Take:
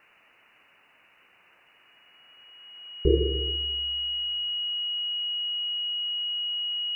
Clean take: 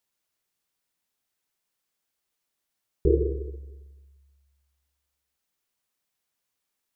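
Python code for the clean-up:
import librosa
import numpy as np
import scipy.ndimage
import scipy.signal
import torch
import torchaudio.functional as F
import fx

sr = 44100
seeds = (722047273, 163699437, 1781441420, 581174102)

y = fx.notch(x, sr, hz=2900.0, q=30.0)
y = fx.noise_reduce(y, sr, print_start_s=0.67, print_end_s=1.17, reduce_db=21.0)
y = fx.fix_echo_inverse(y, sr, delay_ms=291, level_db=-20.0)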